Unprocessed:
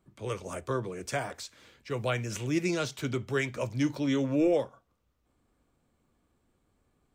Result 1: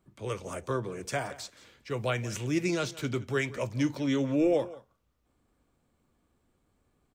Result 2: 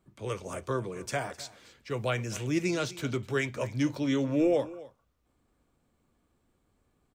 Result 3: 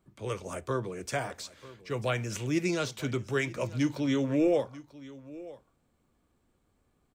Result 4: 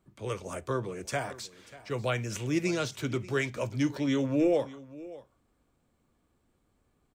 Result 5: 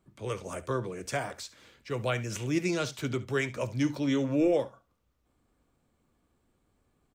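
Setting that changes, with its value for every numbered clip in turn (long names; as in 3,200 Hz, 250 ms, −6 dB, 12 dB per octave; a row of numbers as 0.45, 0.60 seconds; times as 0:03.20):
single-tap delay, delay time: 174, 257, 941, 589, 70 milliseconds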